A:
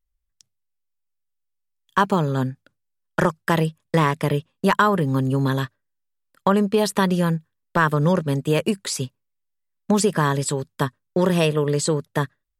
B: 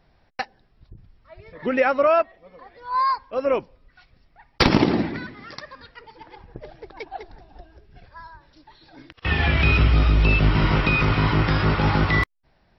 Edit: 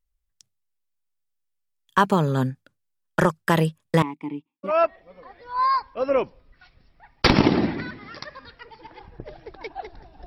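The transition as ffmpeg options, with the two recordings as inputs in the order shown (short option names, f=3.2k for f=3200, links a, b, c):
-filter_complex "[0:a]asettb=1/sr,asplit=3[a][b][c];[a]atrim=end=4.024[d];[b]atrim=start=4.02:end=4.81,asetpts=PTS-STARTPTS,afade=t=in:d=0.004:c=qsin,afade=t=out:st=0.786:d=0.004:c=qsin,asplit=3[e][f][g];[e]bandpass=f=300:t=q:w=8,volume=0dB[h];[f]bandpass=f=870:t=q:w=8,volume=-6dB[i];[g]bandpass=f=2.24k:t=q:w=8,volume=-9dB[j];[h][i][j]amix=inputs=3:normalize=0[k];[c]atrim=start=4.806[l];[d][k]acrossfade=d=0.004:c1=hsin:c2=qsin[m];[m][l]acrossfade=d=0.004:c1=qsin:c2=hsin,apad=whole_dur=10.26,atrim=end=10.26,atrim=end=4.81,asetpts=PTS-STARTPTS[n];[1:a]atrim=start=1.99:end=7.62,asetpts=PTS-STARTPTS[o];[n][o]acrossfade=d=0.18:c1=tri:c2=tri"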